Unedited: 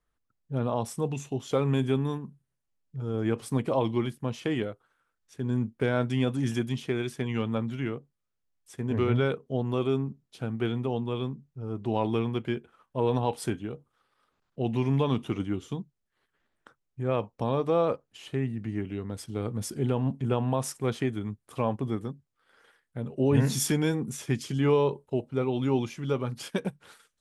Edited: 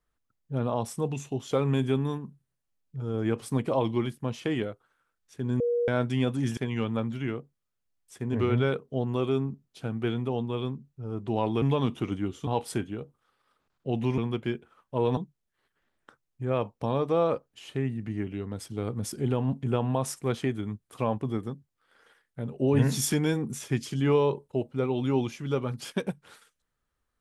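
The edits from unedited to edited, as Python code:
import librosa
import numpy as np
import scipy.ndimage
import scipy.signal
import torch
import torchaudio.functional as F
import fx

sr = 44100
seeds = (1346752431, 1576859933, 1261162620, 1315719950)

y = fx.edit(x, sr, fx.bleep(start_s=5.6, length_s=0.28, hz=478.0, db=-23.0),
    fx.cut(start_s=6.57, length_s=0.58),
    fx.swap(start_s=12.2, length_s=0.99, other_s=14.9, other_length_s=0.85), tone=tone)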